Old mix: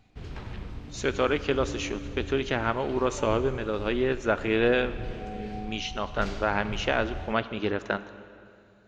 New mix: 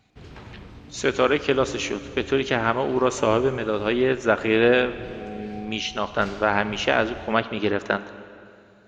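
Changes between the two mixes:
speech +5.5 dB; master: add HPF 110 Hz 6 dB/oct

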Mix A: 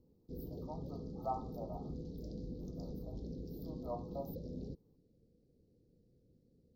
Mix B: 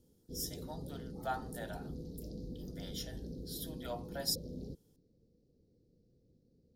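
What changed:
speech: remove brick-wall FIR band-stop 1300–14000 Hz; master: add high shelf 5700 Hz +8 dB

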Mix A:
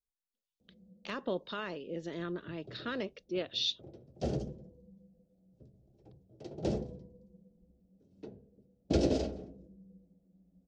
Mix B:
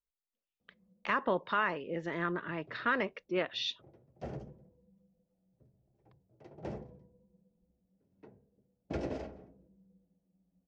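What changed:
background -11.0 dB; master: add ten-band EQ 125 Hz +4 dB, 1000 Hz +11 dB, 2000 Hz +11 dB, 4000 Hz -7 dB, 8000 Hz -5 dB

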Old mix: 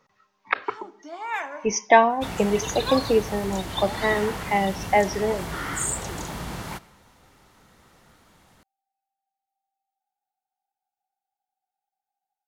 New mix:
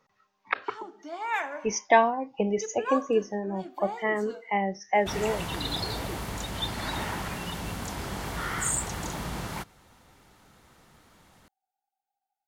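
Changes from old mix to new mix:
speech -4.0 dB; second sound: entry +2.85 s; reverb: off

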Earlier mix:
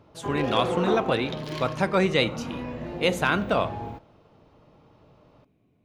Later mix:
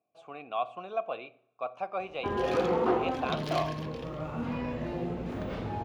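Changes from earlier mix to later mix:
speech: add vowel filter a; background: entry +2.00 s

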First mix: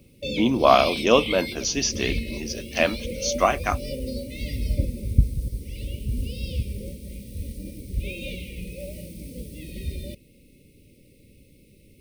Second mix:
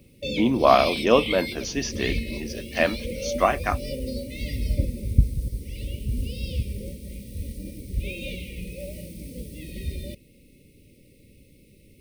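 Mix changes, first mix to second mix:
speech: add high shelf 3700 Hz -11 dB; master: add bell 1800 Hz +6 dB 0.21 oct

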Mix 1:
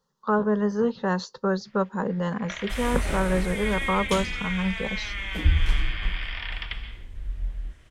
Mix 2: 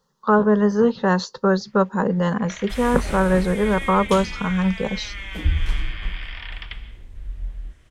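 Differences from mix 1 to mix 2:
speech +6.5 dB; first sound: send -8.5 dB

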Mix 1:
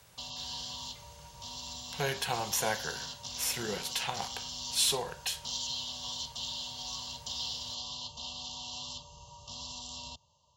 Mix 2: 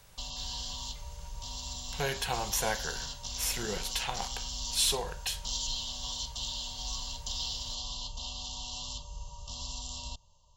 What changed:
background: remove BPF 100–6400 Hz; master: remove HPF 57 Hz

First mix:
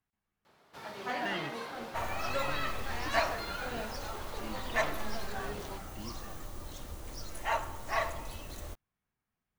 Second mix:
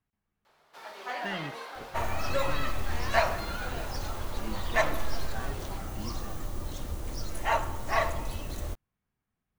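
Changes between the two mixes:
first sound: add HPF 570 Hz 12 dB/oct; second sound +3.5 dB; master: add low shelf 440 Hz +5.5 dB

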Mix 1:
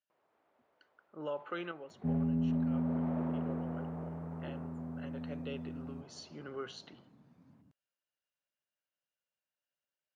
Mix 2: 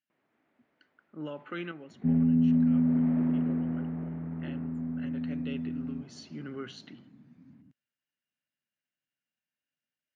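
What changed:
second sound: add tone controls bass -3 dB, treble -13 dB; master: add graphic EQ 125/250/500/1000/2000 Hz +6/+11/-5/-5/+7 dB

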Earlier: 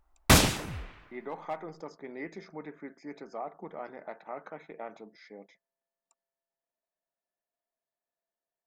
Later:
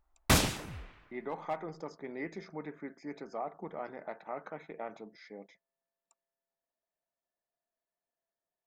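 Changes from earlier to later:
speech: add bell 77 Hz +9 dB 1.2 oct; background -5.5 dB

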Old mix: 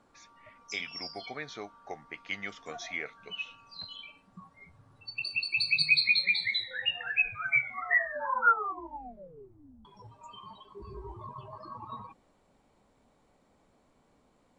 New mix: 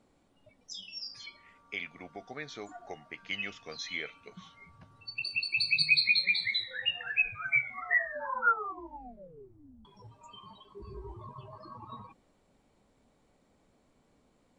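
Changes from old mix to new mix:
speech: entry +1.00 s; master: add bell 980 Hz -4.5 dB 1.4 oct

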